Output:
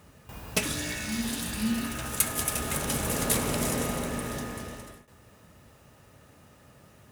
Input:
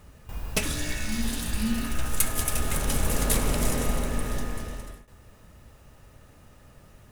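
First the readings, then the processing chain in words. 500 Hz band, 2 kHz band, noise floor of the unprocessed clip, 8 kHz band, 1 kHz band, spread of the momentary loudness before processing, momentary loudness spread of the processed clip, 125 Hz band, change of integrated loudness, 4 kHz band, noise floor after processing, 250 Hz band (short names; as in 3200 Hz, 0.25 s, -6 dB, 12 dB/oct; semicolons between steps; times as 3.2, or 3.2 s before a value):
0.0 dB, 0.0 dB, -53 dBFS, 0.0 dB, 0.0 dB, 13 LU, 14 LU, -4.0 dB, -1.0 dB, 0.0 dB, -57 dBFS, 0.0 dB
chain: HPF 100 Hz 12 dB/oct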